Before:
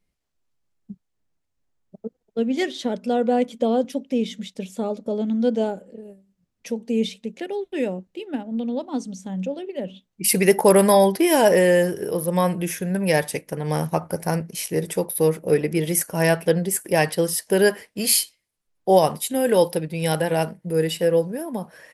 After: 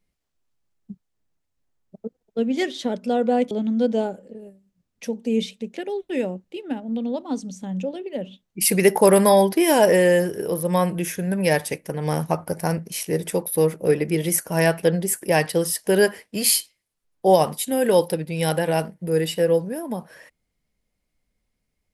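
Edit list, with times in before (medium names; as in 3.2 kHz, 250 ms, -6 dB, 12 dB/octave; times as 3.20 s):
3.51–5.14 s: delete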